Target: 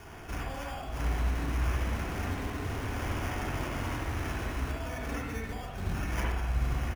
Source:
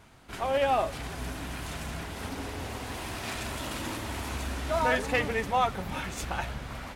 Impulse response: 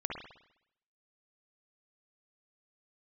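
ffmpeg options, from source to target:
-filter_complex "[0:a]lowpass=10000,aecho=1:1:2.7:0.43,acompressor=threshold=0.0251:ratio=6,alimiter=level_in=1.68:limit=0.0631:level=0:latency=1:release=384,volume=0.596,acrossover=split=230|3000[s0][s1][s2];[s1]acompressor=threshold=0.00224:ratio=6[s3];[s0][s3][s2]amix=inputs=3:normalize=0,acrusher=samples=11:mix=1:aa=0.000001[s4];[1:a]atrim=start_sample=2205,asetrate=42777,aresample=44100[s5];[s4][s5]afir=irnorm=-1:irlink=0,volume=2.37"

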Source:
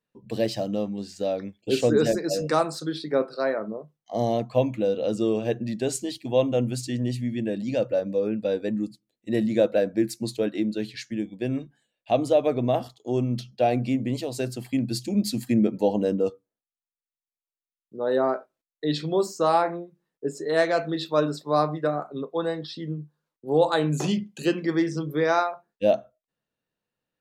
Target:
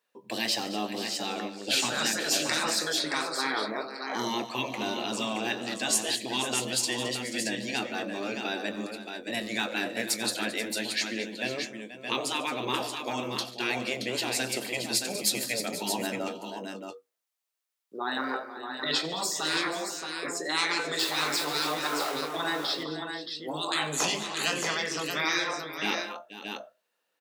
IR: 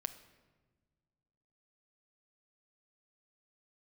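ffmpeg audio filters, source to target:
-filter_complex "[0:a]asettb=1/sr,asplit=3[s0][s1][s2];[s0]atrim=end=20.994[s3];[s1]atrim=start=20.99:end=22.21,asetpts=PTS-STARTPTS,afade=t=in:d=0.004:c=qsin,afade=t=out:st=1.216:d=0.004:c=qsin,aeval=exprs='val(0)+0.5*0.0168*sgn(val(0))':c=same[s4];[s2]atrim=start=22.206[s5];[s3][s4]acrossfade=d=0.004:c1=hsin:c2=qsin[s6];[s6][s5]acrossfade=d=0.004:c1=qsin:c2=hsin,highpass=540,afftfilt=real='re*lt(hypot(re,im),0.0891)':imag='im*lt(hypot(re,im),0.0891)':win_size=1024:overlap=0.75,asplit=2[s7][s8];[s8]adelay=23,volume=0.2[s9];[s7][s9]amix=inputs=2:normalize=0,aecho=1:1:90|144|218|485|624:0.126|0.112|0.188|0.211|0.473,volume=2.66"

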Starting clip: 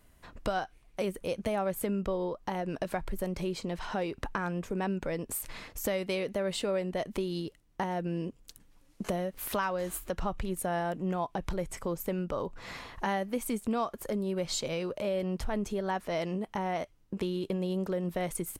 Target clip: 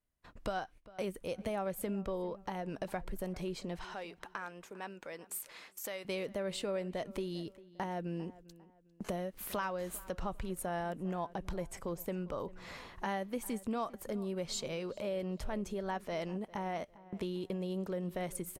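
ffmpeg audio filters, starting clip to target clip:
-filter_complex "[0:a]asettb=1/sr,asplit=3[s0][s1][s2];[s0]atrim=end=3.844[s3];[s1]atrim=start=3.84:end=6.05,asetpts=PTS-STARTPTS,afade=t=in:d=0.004:c=qsin,afade=t=out:st=2.206:d=0.004:c=qsin,highpass=f=930:p=1[s4];[s2]atrim=start=6.046[s5];[s3][s4]acrossfade=d=0.004:c1=hsin:c2=qsin[s6];[s6][s5]acrossfade=d=0.004:c1=qsin:c2=hsin,agate=range=0.1:threshold=0.00316:ratio=16:detection=peak,asplit=2[s7][s8];[s8]adelay=400,lowpass=f=2900:p=1,volume=0.112,asplit=2[s9][s10];[s10]adelay=400,lowpass=f=2900:p=1,volume=0.35,asplit=2[s11][s12];[s12]adelay=400,lowpass=f=2900:p=1,volume=0.35[s13];[s7][s9][s11][s13]amix=inputs=4:normalize=0,volume=0.531"

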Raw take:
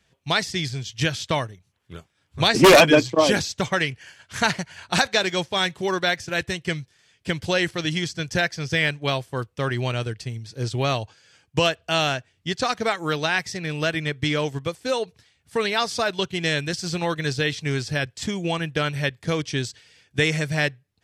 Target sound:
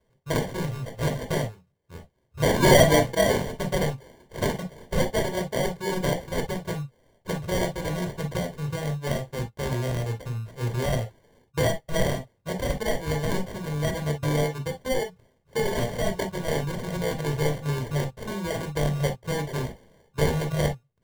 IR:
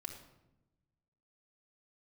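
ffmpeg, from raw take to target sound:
-filter_complex "[0:a]asettb=1/sr,asplit=3[s0][s1][s2];[s0]atrim=end=8.374[s3];[s1]atrim=start=8.37:end=8.93,asetpts=PTS-STARTPTS,afade=t=in:d=0.004:c=qsin,afade=t=out:st=0.556:d=0.004:c=qsin,equalizer=f=2200:w=0.5:g=-11.5[s4];[s2]atrim=start=8.926[s5];[s3][s4]acrossfade=d=0.004:c1=hsin:c2=qsin[s6];[s6][s5]acrossfade=d=0.004:c1=qsin:c2=hsin,acrusher=samples=34:mix=1:aa=0.000001[s7];[1:a]atrim=start_sample=2205,atrim=end_sample=4410,asetrate=66150,aresample=44100[s8];[s7][s8]afir=irnorm=-1:irlink=0,volume=1.41"

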